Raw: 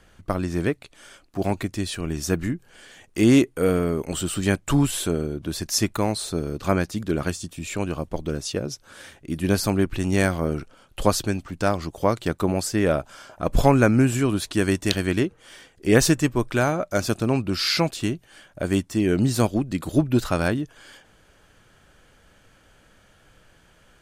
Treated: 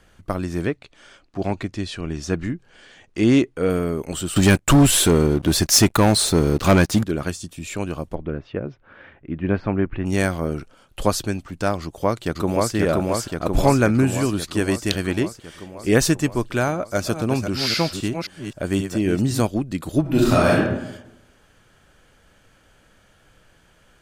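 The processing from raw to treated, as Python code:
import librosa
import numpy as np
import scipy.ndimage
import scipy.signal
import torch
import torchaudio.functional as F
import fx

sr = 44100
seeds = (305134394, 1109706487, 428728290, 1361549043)

y = fx.lowpass(x, sr, hz=5600.0, slope=12, at=(0.66, 3.7))
y = fx.leveller(y, sr, passes=3, at=(4.36, 7.04))
y = fx.lowpass(y, sr, hz=2400.0, slope=24, at=(8.14, 10.05), fade=0.02)
y = fx.echo_throw(y, sr, start_s=11.82, length_s=0.92, ms=530, feedback_pct=70, wet_db=-0.5)
y = fx.reverse_delay(y, sr, ms=263, wet_db=-7, at=(16.69, 19.4))
y = fx.reverb_throw(y, sr, start_s=20.01, length_s=0.56, rt60_s=0.91, drr_db=-6.0)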